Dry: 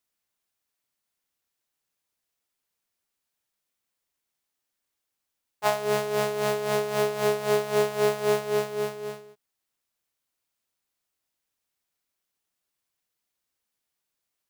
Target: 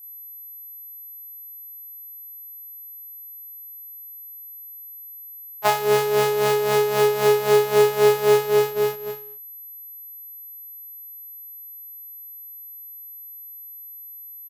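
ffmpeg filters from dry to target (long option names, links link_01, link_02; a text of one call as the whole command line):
ffmpeg -i in.wav -filter_complex "[0:a]agate=range=-7dB:threshold=-32dB:ratio=16:detection=peak,aeval=exprs='val(0)+0.00501*sin(2*PI*12000*n/s)':channel_layout=same,asplit=2[link_01][link_02];[link_02]adelay=31,volume=-4dB[link_03];[link_01][link_03]amix=inputs=2:normalize=0,volume=4.5dB" out.wav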